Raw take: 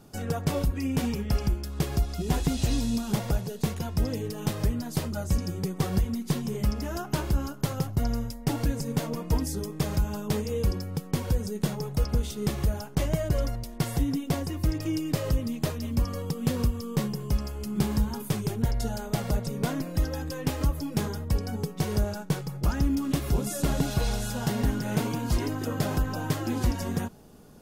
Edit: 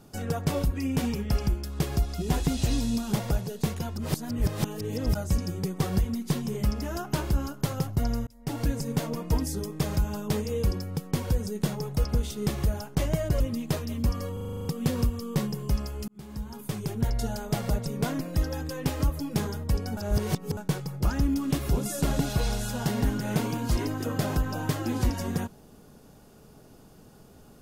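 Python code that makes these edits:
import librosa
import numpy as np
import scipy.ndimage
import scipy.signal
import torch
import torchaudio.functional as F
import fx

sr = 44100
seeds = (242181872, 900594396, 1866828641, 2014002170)

y = fx.edit(x, sr, fx.reverse_span(start_s=3.96, length_s=1.19),
    fx.fade_in_span(start_s=8.27, length_s=0.4),
    fx.cut(start_s=13.4, length_s=1.93),
    fx.stutter(start_s=16.26, slice_s=0.04, count=9),
    fx.fade_in_span(start_s=17.69, length_s=1.04),
    fx.reverse_span(start_s=21.58, length_s=0.6), tone=tone)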